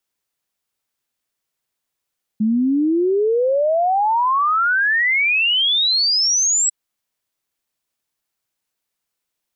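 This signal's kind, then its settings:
exponential sine sweep 210 Hz → 7,900 Hz 4.30 s −14 dBFS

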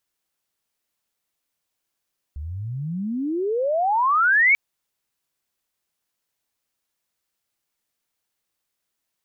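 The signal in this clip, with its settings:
glide logarithmic 69 Hz → 2,300 Hz −29 dBFS → −12.5 dBFS 2.19 s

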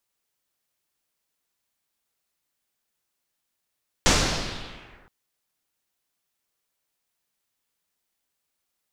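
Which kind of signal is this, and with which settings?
filter sweep on noise pink, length 1.02 s lowpass, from 6,700 Hz, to 1,500 Hz, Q 1.9, linear, gain ramp −39 dB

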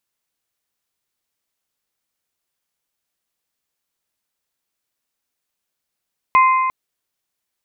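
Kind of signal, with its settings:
struck metal bell, length 0.35 s, lowest mode 1,040 Hz, modes 3, decay 2.12 s, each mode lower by 8.5 dB, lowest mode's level −8 dB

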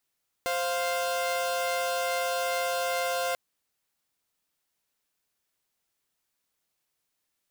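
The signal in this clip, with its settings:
held notes C5/F5 saw, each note −27 dBFS 2.89 s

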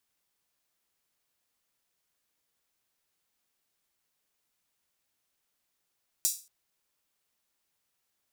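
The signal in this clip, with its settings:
open synth hi-hat length 0.23 s, high-pass 6,200 Hz, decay 0.33 s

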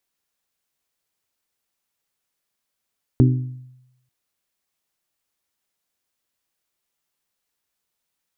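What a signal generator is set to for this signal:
struck glass bell, lowest mode 127 Hz, modes 4, decay 0.88 s, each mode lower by 4 dB, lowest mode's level −9.5 dB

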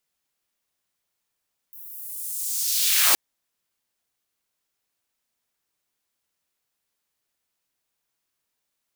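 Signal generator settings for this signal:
filter sweep on noise white, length 1.42 s highpass, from 15,000 Hz, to 260 Hz, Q 1.3, linear, gain ramp +24 dB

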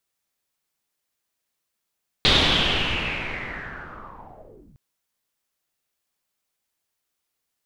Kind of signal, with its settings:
filter sweep on noise pink, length 2.51 s lowpass, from 3,800 Hz, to 120 Hz, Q 5.5, linear, gain ramp −34.5 dB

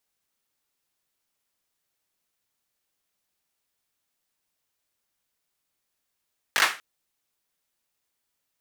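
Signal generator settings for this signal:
synth clap length 0.24 s, apart 20 ms, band 1,600 Hz, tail 0.31 s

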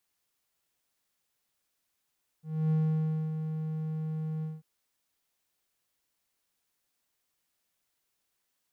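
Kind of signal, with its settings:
note with an ADSR envelope triangle 157 Hz, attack 278 ms, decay 604 ms, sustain −8 dB, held 2.00 s, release 191 ms −21 dBFS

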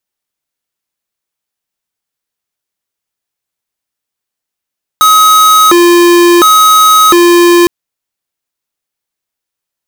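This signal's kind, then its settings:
siren hi-lo 347–1,270 Hz 0.71 per second square −4.5 dBFS 2.66 s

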